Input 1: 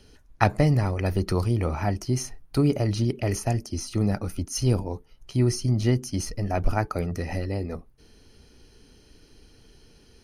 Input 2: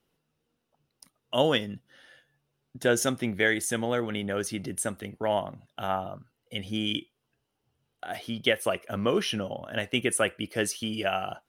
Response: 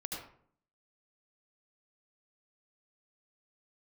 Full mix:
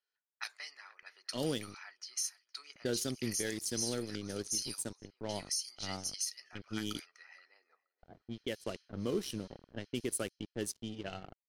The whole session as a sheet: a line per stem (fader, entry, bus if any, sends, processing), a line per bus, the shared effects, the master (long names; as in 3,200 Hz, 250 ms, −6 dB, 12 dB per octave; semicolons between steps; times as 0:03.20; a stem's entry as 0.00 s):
+2.0 dB, 0.00 s, no send, echo send −19 dB, high-pass filter 1,500 Hz 24 dB per octave
−3.5 dB, 0.00 s, no send, no echo send, dead-zone distortion −35 dBFS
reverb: not used
echo: repeating echo 474 ms, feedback 32%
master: flat-topped bell 1,300 Hz −11 dB 2.7 octaves; low-pass that shuts in the quiet parts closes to 590 Hz, open at −32.5 dBFS; brickwall limiter −24 dBFS, peak gain reduction 8.5 dB